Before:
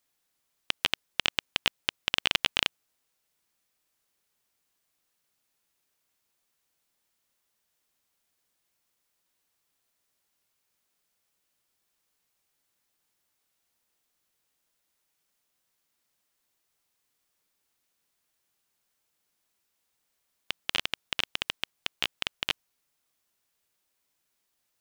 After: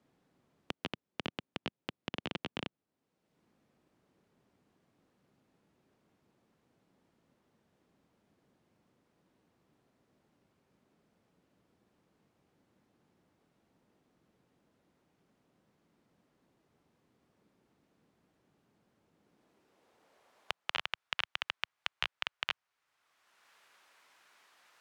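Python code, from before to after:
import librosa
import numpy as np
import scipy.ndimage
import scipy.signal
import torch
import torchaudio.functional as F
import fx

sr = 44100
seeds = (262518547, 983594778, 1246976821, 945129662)

y = fx.filter_sweep_bandpass(x, sr, from_hz=200.0, to_hz=1300.0, start_s=19.14, end_s=21.01, q=0.98)
y = fx.band_squash(y, sr, depth_pct=70)
y = y * 10.0 ** (1.5 / 20.0)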